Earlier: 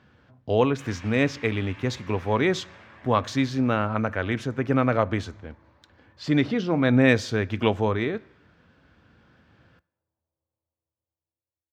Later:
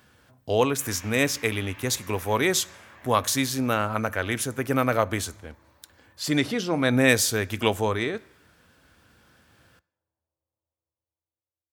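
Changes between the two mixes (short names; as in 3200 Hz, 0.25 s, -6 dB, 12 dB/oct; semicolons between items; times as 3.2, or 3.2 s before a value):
speech: remove air absorption 200 m; master: add bell 170 Hz -4.5 dB 2 oct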